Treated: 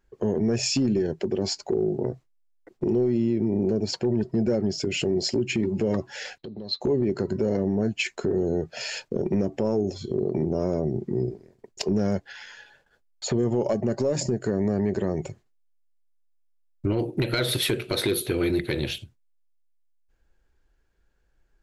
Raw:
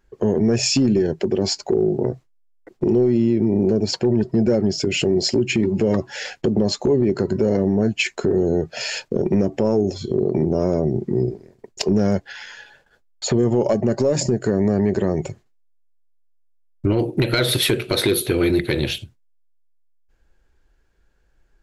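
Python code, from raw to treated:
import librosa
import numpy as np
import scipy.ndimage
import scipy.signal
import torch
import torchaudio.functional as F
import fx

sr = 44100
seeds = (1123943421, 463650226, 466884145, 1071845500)

y = fx.ladder_lowpass(x, sr, hz=4100.0, resonance_pct=90, at=(6.38, 6.81))
y = y * librosa.db_to_amplitude(-6.0)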